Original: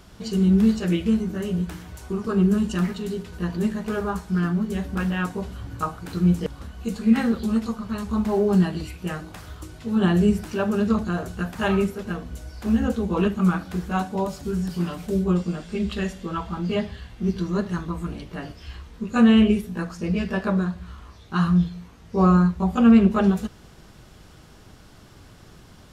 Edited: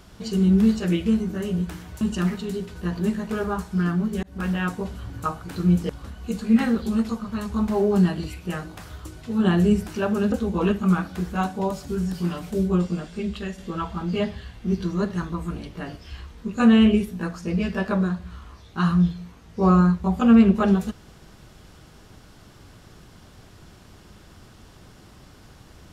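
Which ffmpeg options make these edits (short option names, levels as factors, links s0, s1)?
-filter_complex "[0:a]asplit=5[s0][s1][s2][s3][s4];[s0]atrim=end=2.012[s5];[s1]atrim=start=2.578:end=4.8,asetpts=PTS-STARTPTS,afade=t=out:st=2.218:d=0.004:c=hsin[s6];[s2]atrim=start=4.8:end=10.892,asetpts=PTS-STARTPTS,afade=t=in:d=0.26[s7];[s3]atrim=start=12.878:end=16.14,asetpts=PTS-STARTPTS,afade=t=out:st=2.632:d=0.63:silence=0.473151[s8];[s4]atrim=start=16.14,asetpts=PTS-STARTPTS,afade=t=in:d=0.004:c=hsin:silence=0.473151[s9];[s6][s7]concat=n=2:v=0:a=1[s10];[s5][s10]acrossfade=d=0.004:c1=hsin:c2=hsin[s11];[s8][s9]concat=n=2:v=0:a=1[s12];[s11][s12]acrossfade=d=0.004:c1=hsin:c2=hsin"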